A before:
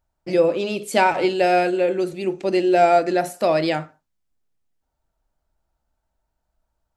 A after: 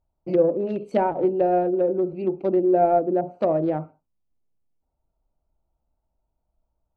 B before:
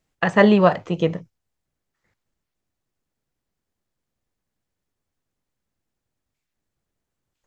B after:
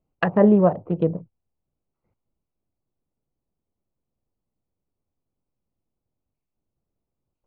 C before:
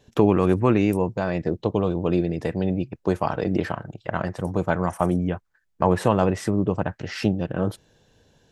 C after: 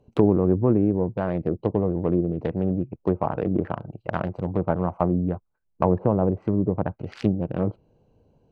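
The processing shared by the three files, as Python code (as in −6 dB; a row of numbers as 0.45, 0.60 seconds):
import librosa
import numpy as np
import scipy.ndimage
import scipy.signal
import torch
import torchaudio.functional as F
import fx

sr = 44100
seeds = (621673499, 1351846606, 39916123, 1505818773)

y = fx.wiener(x, sr, points=25)
y = fx.env_lowpass_down(y, sr, base_hz=670.0, full_db=-17.0)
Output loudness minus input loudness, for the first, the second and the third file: −2.5, −1.5, −0.5 LU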